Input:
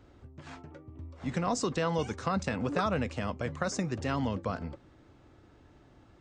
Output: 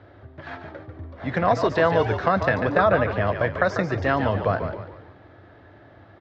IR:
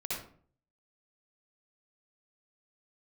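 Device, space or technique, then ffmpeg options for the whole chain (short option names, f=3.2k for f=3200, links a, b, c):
frequency-shifting delay pedal into a guitar cabinet: -filter_complex "[0:a]asplit=6[a][b][c][d][e][f];[b]adelay=144,afreqshift=-54,volume=-8dB[g];[c]adelay=288,afreqshift=-108,volume=-14.9dB[h];[d]adelay=432,afreqshift=-162,volume=-21.9dB[i];[e]adelay=576,afreqshift=-216,volume=-28.8dB[j];[f]adelay=720,afreqshift=-270,volume=-35.7dB[k];[a][g][h][i][j][k]amix=inputs=6:normalize=0,highpass=100,equalizer=f=100:t=q:w=4:g=8,equalizer=f=150:t=q:w=4:g=-5,equalizer=f=230:t=q:w=4:g=-8,equalizer=f=640:t=q:w=4:g=8,equalizer=f=1.7k:t=q:w=4:g=8,equalizer=f=2.7k:t=q:w=4:g=-5,lowpass=f=3.9k:w=0.5412,lowpass=f=3.9k:w=1.3066,asettb=1/sr,asplit=3[l][m][n];[l]atrim=end=2.774[o];[m]atrim=start=2.77:end=3.27,asetpts=PTS-STARTPTS,afade=t=in:d=0.004:c=qsin,afade=t=out:st=0.496:d=0.004:c=qsin,highshelf=f=4.8k:g=-9[p];[n]atrim=start=3.266[q];[o][p]acrossfade=d=0.004:c1=hsin:c2=qsin[r];[r][q]acrossfade=d=0.004:c1=qsin:c2=hsin,volume=8.5dB"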